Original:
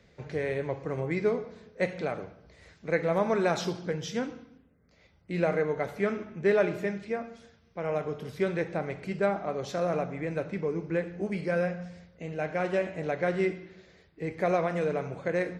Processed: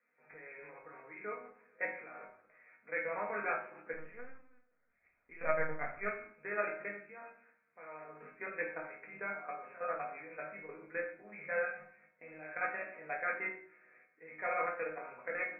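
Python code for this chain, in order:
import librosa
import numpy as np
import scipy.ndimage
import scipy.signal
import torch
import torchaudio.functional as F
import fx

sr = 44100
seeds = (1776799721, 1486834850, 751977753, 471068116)

y = scipy.signal.sosfilt(scipy.signal.butter(2, 260.0, 'highpass', fs=sr, output='sos'), x)
y = fx.tilt_eq(y, sr, slope=1.5)
y = fx.room_early_taps(y, sr, ms=(12, 59, 72), db=(-12.0, -17.5, -18.0))
y = fx.level_steps(y, sr, step_db=15)
y = fx.resonator_bank(y, sr, root=44, chord='minor', decay_s=0.24)
y = fx.lpc_vocoder(y, sr, seeds[0], excitation='pitch_kept', order=10, at=(3.93, 6.05))
y = scipy.signal.sosfilt(scipy.signal.cheby1(8, 1.0, 2500.0, 'lowpass', fs=sr, output='sos'), y)
y = fx.peak_eq(y, sr, hz=1600.0, db=13.0, octaves=1.9)
y = fx.room_shoebox(y, sr, seeds[1], volume_m3=350.0, walls='furnished', distance_m=1.8)
y = fx.upward_expand(y, sr, threshold_db=-35.0, expansion=1.5)
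y = y * librosa.db_to_amplitude(1.5)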